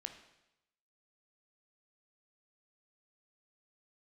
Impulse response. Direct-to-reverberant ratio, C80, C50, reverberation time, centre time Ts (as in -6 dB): 6.0 dB, 11.5 dB, 9.0 dB, 0.90 s, 16 ms